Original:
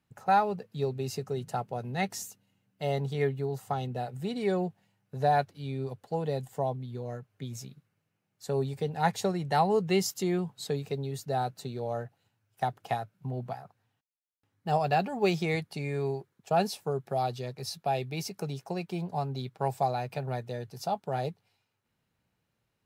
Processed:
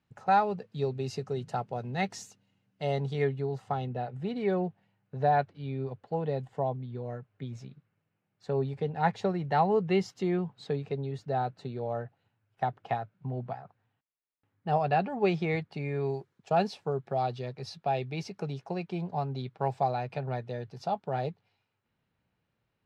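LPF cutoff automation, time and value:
3.2 s 5400 Hz
3.97 s 2800 Hz
15.99 s 2800 Hz
16.18 s 7400 Hz
16.7 s 3700 Hz

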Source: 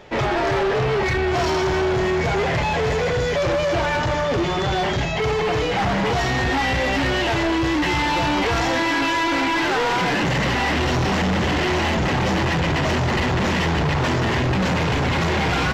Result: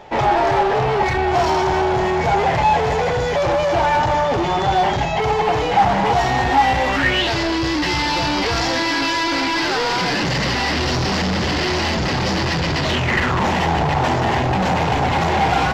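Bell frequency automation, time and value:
bell +11 dB 0.53 oct
6.84 s 820 Hz
7.32 s 4800 Hz
12.8 s 4800 Hz
13.49 s 780 Hz

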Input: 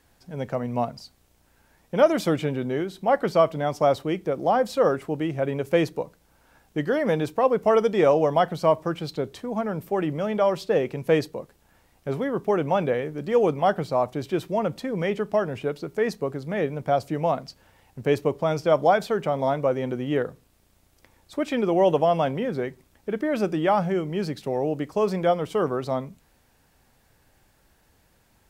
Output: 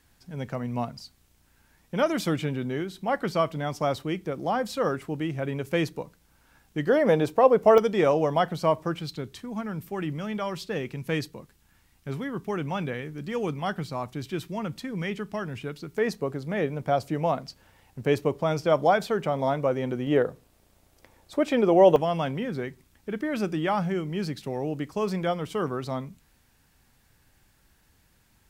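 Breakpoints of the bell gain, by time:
bell 580 Hz 1.5 oct
-7.5 dB
from 6.87 s +3 dB
from 7.78 s -4 dB
from 9.01 s -13 dB
from 15.98 s -2.5 dB
from 20.07 s +3.5 dB
from 21.96 s -7.5 dB

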